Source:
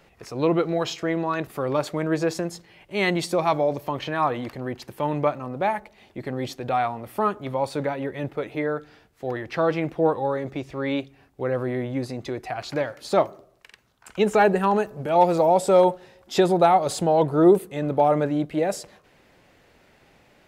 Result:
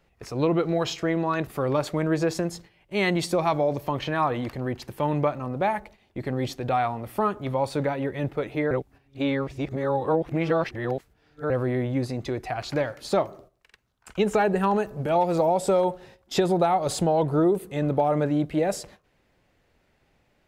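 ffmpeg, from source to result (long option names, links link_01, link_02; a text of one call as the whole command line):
ffmpeg -i in.wav -filter_complex "[0:a]asplit=3[link_01][link_02][link_03];[link_01]atrim=end=8.712[link_04];[link_02]atrim=start=8.708:end=11.502,asetpts=PTS-STARTPTS,areverse[link_05];[link_03]atrim=start=11.498[link_06];[link_04][link_05]acrossfade=duration=0.004:curve1=hsin:curve2=hsin[link_07];[link_07][link_06]acrossfade=duration=0.004:curve1=hsin:curve2=hsin,agate=range=-11dB:threshold=-47dB:ratio=16:detection=peak,lowshelf=frequency=100:gain=10,acompressor=threshold=-18dB:ratio=6" out.wav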